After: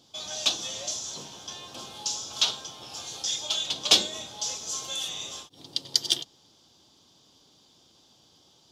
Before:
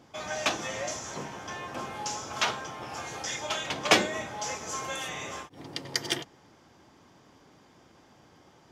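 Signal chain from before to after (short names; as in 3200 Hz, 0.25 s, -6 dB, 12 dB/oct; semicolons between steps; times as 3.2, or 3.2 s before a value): resonant high shelf 2700 Hz +10.5 dB, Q 3; gain -7 dB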